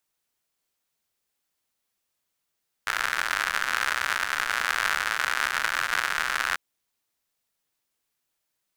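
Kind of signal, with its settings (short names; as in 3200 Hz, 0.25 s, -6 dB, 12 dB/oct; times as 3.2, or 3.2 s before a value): rain from filtered ticks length 3.69 s, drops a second 130, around 1500 Hz, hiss -23.5 dB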